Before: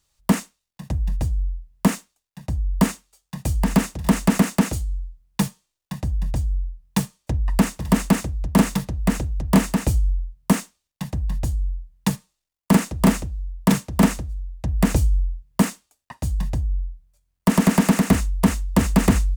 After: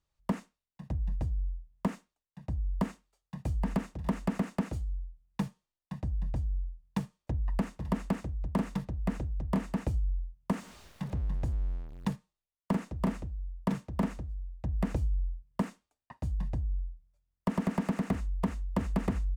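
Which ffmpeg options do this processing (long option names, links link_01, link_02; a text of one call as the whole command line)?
ffmpeg -i in.wav -filter_complex "[0:a]asettb=1/sr,asplit=3[link_01][link_02][link_03];[link_01]atrim=end=10.534[link_04];[link_02]atrim=start=10.53:end=12.13,asetpts=PTS-STARTPTS,afade=type=in:duration=0.004:curve=qsin,afade=type=out:start_time=1.596:duration=0.004:curve=qsin,aeval=exprs='val(0)+0.5*0.0299*sgn(val(0))':channel_layout=same[link_05];[link_03]atrim=start=12.126[link_06];[link_04][link_05]acrossfade=duration=0.004:curve1=hsin:curve2=qsin[link_07];[link_07][link_06]acrossfade=duration=0.004:curve1=qsin:curve2=hsin,lowpass=frequency=1500:poles=1,acompressor=threshold=-17dB:ratio=6,volume=-8.5dB" out.wav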